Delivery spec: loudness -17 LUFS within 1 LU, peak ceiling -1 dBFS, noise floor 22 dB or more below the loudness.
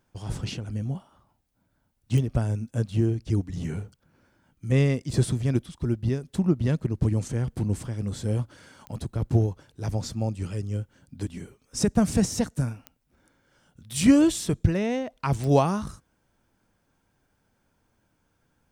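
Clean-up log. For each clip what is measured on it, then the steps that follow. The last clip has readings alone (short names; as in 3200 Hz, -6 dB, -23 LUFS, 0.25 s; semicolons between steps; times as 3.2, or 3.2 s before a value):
clicks 4; loudness -26.5 LUFS; peak -7.0 dBFS; loudness target -17.0 LUFS
-> de-click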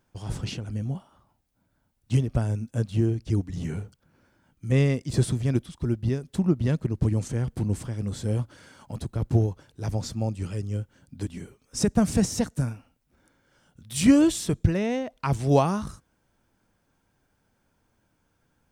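clicks 0; loudness -26.5 LUFS; peak -7.0 dBFS; loudness target -17.0 LUFS
-> gain +9.5 dB; limiter -1 dBFS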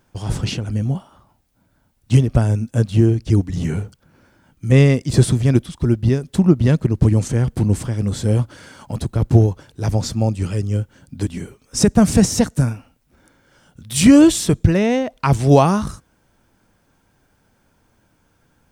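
loudness -17.5 LUFS; peak -1.0 dBFS; noise floor -62 dBFS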